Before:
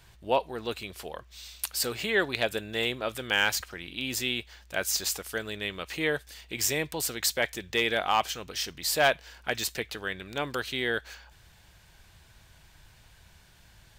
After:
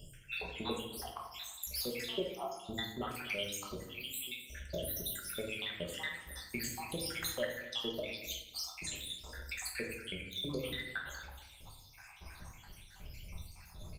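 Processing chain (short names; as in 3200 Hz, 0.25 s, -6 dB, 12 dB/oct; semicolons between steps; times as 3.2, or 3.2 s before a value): random spectral dropouts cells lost 80%; 3.8–4.44 pre-emphasis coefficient 0.97; transient shaper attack +1 dB, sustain +6 dB; compressor 3:1, threshold -48 dBFS, peak gain reduction 17 dB; echo 0.256 s -18 dB; shoebox room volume 220 m³, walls mixed, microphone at 1.2 m; gain +6.5 dB; Opus 32 kbps 48000 Hz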